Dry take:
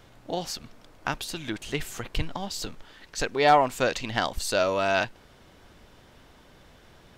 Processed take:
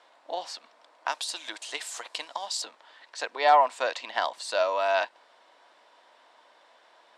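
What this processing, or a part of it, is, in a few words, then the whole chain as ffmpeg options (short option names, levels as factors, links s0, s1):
phone speaker on a table: -filter_complex "[0:a]asettb=1/sr,asplit=3[s0][s1][s2];[s0]atrim=end=1.084[s3];[s1]atrim=start=1.08:end=2.62,asetpts=PTS-STARTPTS,afade=t=in:d=0.004:c=qsin,afade=t=out:st=1.536:d=0.004:c=qsin,bass=f=250:g=-8,treble=f=4000:g=12[s4];[s2]atrim=start=2.616[s5];[s3][s4]acrossfade=d=0.004:c1=hsin:c2=qsin[s6];[s6][s5]acrossfade=d=0.004:c1=qsin:c2=hsin,highpass=f=390:w=0.5412,highpass=f=390:w=1.3066,equalizer=f=400:t=q:w=4:g=-8,equalizer=f=660:t=q:w=4:g=5,equalizer=f=980:t=q:w=4:g=9,equalizer=f=1800:t=q:w=4:g=3,equalizer=f=3900:t=q:w=4:g=3,equalizer=f=6400:t=q:w=4:g=-5,lowpass=f=8800:w=0.5412,lowpass=f=8800:w=1.3066,volume=0.596"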